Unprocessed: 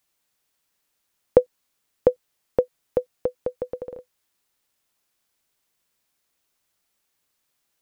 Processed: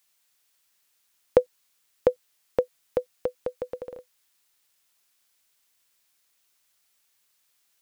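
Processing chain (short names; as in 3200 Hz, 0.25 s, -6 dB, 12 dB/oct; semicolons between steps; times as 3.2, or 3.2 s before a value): tilt shelf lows -5.5 dB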